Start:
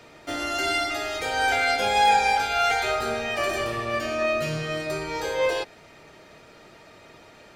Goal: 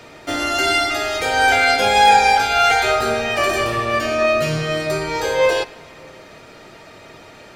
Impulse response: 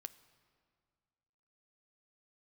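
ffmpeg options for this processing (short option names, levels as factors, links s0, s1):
-filter_complex "[0:a]asplit=2[s0][s1];[1:a]atrim=start_sample=2205[s2];[s1][s2]afir=irnorm=-1:irlink=0,volume=3.76[s3];[s0][s3]amix=inputs=2:normalize=0,volume=0.794"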